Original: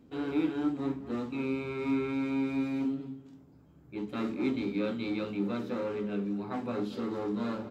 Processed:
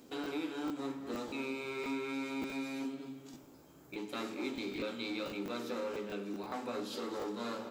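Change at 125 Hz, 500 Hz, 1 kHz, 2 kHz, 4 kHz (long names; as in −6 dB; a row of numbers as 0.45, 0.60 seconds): −12.5, −4.5, −2.0, −0.5, +3.5 decibels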